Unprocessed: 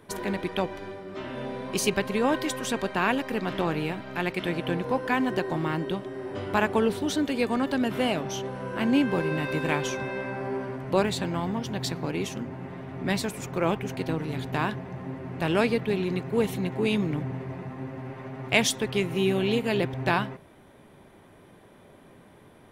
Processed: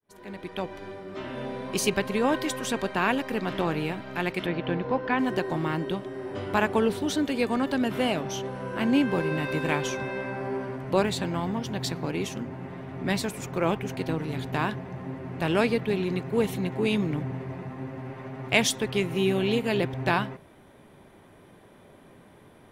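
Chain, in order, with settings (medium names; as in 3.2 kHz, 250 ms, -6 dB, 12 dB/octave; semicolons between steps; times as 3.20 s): fade-in on the opening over 1.02 s; 4.46–5.19 s: Bessel low-pass 3.4 kHz, order 8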